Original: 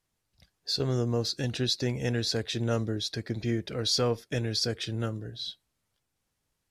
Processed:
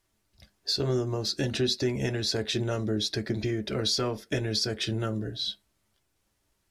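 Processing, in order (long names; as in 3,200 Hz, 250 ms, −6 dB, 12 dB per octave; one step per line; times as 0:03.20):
downward compressor 4 to 1, threshold −30 dBFS, peak gain reduction 7 dB
on a send: convolution reverb RT60 0.20 s, pre-delay 3 ms, DRR 6.5 dB
on the sum: level +5 dB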